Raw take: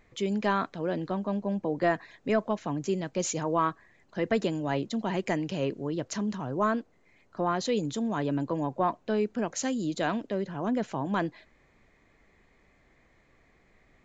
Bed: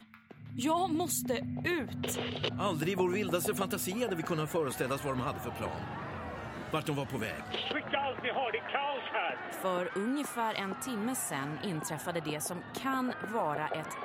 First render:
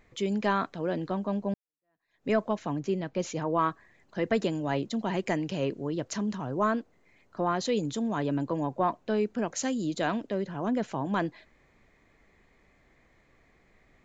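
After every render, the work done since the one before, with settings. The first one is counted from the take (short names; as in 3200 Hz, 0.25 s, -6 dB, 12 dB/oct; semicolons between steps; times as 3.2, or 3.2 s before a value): 1.54–2.28 fade in exponential; 2.8–3.59 air absorption 130 m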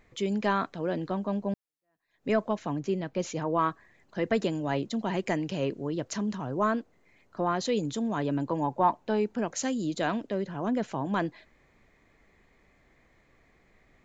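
8.48–9.39 bell 880 Hz +9.5 dB 0.21 oct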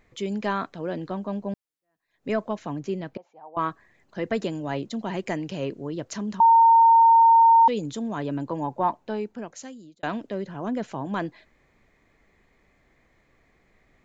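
3.17–3.57 band-pass 790 Hz, Q 8.4; 6.4–7.68 bleep 915 Hz -11.5 dBFS; 8.87–10.03 fade out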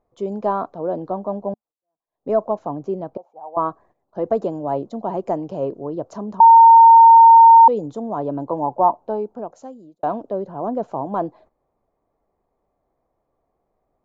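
gate -53 dBFS, range -12 dB; EQ curve 220 Hz 0 dB, 730 Hz +11 dB, 1200 Hz +3 dB, 1900 Hz -17 dB, 5000 Hz -12 dB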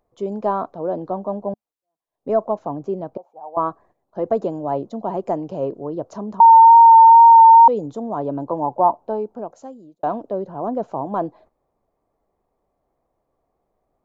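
wow and flutter 20 cents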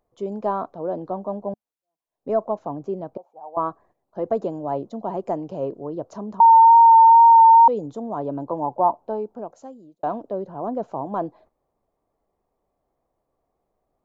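gain -3 dB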